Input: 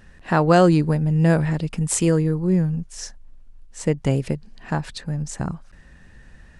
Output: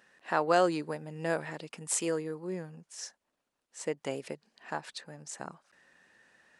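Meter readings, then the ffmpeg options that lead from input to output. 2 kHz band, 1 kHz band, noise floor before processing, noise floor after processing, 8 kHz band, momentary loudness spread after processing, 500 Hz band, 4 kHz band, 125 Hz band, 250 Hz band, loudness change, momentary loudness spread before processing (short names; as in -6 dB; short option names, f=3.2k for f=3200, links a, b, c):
-7.5 dB, -8.0 dB, -48 dBFS, -84 dBFS, -7.5 dB, 18 LU, -9.5 dB, -7.5 dB, -25.0 dB, -17.5 dB, -12.5 dB, 14 LU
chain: -af "highpass=430,volume=-7.5dB"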